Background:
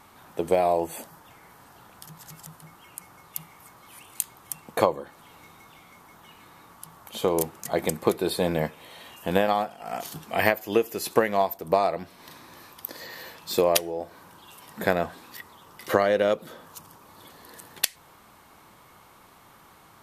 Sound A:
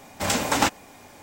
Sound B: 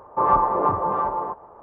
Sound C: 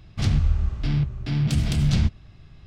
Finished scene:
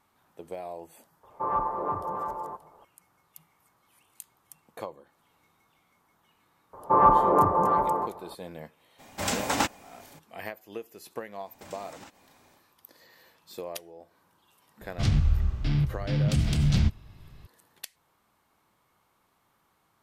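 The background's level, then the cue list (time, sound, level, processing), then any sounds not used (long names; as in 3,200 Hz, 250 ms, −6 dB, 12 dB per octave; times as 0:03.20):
background −16.5 dB
0:01.23: mix in B −9.5 dB
0:06.73: mix in B −0.5 dB + parametric band 220 Hz +4 dB 1.6 octaves
0:08.98: mix in A −5 dB, fades 0.02 s
0:11.41: mix in A −13.5 dB, fades 0.10 s + downward compressor 8 to 1, threshold −31 dBFS
0:14.81: mix in C −2.5 dB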